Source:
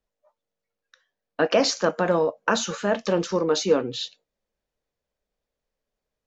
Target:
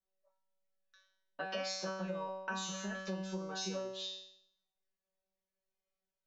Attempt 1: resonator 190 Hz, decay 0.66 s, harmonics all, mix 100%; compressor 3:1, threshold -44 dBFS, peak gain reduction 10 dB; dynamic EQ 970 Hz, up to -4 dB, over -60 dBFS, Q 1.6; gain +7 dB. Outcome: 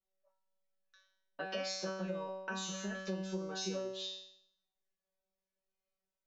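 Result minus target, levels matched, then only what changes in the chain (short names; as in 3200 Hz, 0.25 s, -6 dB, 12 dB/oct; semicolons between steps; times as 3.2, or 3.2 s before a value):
1000 Hz band -3.0 dB
change: dynamic EQ 360 Hz, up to -4 dB, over -60 dBFS, Q 1.6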